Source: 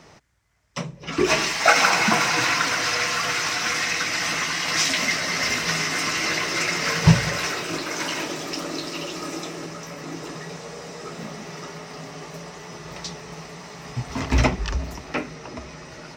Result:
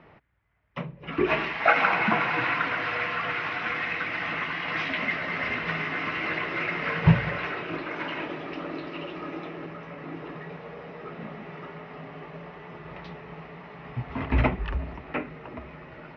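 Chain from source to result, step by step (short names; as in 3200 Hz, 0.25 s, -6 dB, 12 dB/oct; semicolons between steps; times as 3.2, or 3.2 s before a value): inverse Chebyshev low-pass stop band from 8400 Hz, stop band 60 dB; gain -3.5 dB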